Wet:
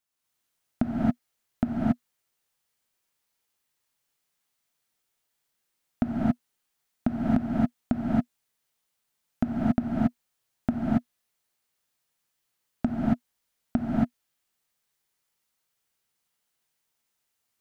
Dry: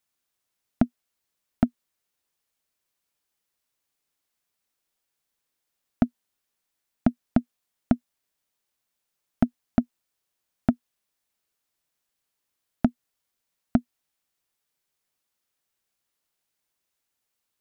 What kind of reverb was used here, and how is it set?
non-linear reverb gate 0.3 s rising, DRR -6.5 dB; gain -5 dB

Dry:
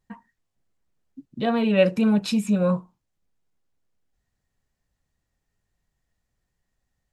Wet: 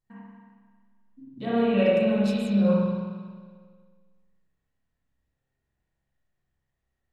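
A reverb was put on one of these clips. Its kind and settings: spring tank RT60 1.7 s, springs 30/45 ms, chirp 35 ms, DRR -8 dB; gain -11 dB

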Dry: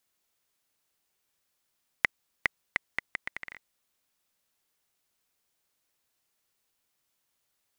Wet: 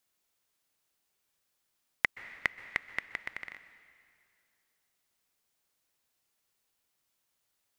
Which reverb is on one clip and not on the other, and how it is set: plate-style reverb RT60 2.3 s, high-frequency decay 0.95×, pre-delay 0.115 s, DRR 13.5 dB; gain -1.5 dB

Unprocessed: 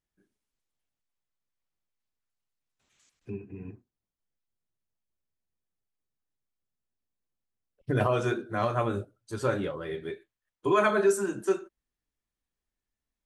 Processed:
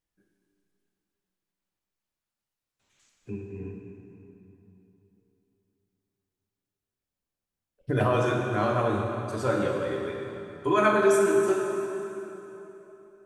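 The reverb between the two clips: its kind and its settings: plate-style reverb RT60 3.4 s, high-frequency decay 0.75×, pre-delay 0 ms, DRR 0 dB

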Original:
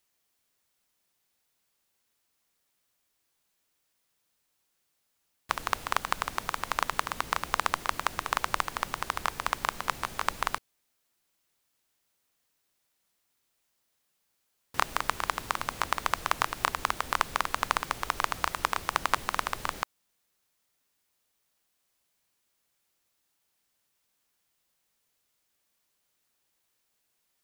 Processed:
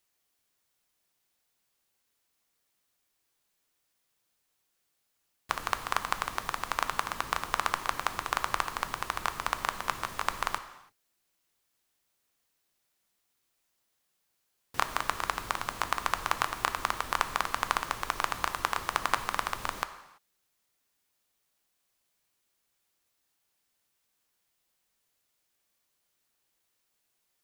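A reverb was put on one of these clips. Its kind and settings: non-linear reverb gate 0.36 s falling, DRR 9.5 dB; gain -1.5 dB

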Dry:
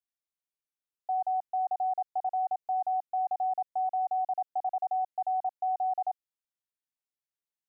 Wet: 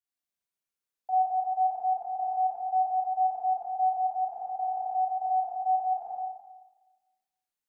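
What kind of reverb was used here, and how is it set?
Schroeder reverb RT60 1.2 s, combs from 32 ms, DRR -5 dB; gain -3.5 dB

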